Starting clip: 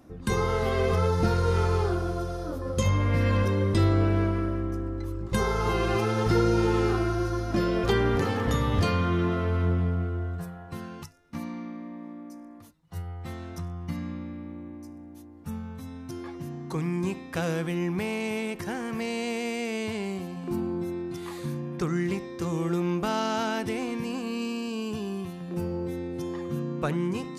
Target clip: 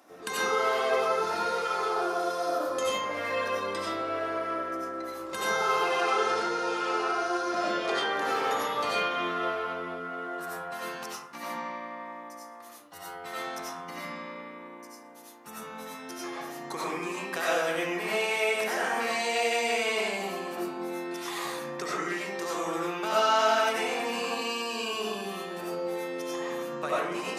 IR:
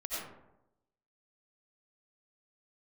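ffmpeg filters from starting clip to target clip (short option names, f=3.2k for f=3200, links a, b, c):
-filter_complex "[0:a]asettb=1/sr,asplit=3[a][b][c];[a]atrim=end=5.924[d];[b]atrim=start=5.92:end=8.11,asetpts=PTS-STARTPTS,afade=t=in:d=0.004:c=qsin,afade=t=out:st=2.186:d=0.004:c=qsin,lowpass=f=9.7k:w=0.5412,lowpass=f=9.7k:w=1.3066[e];[c]atrim=start=8.106[f];[d][e]acrossfade=d=0.004:c1=hsin:c2=qsin[g];[g][f]acrossfade=d=0.004:c1=qsin:c2=hsin,acompressor=threshold=-29dB:ratio=6,highpass=620[h];[1:a]atrim=start_sample=2205[i];[h][i]afir=irnorm=-1:irlink=0,volume=8dB"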